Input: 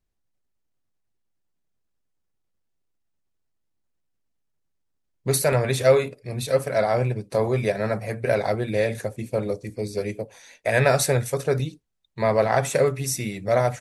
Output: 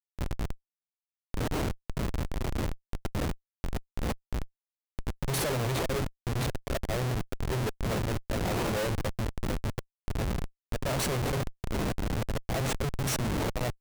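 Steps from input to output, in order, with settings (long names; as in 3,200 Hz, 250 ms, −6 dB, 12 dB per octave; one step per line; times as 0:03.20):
wind on the microphone 610 Hz −28 dBFS
volume swells 349 ms
comparator with hysteresis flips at −27.5 dBFS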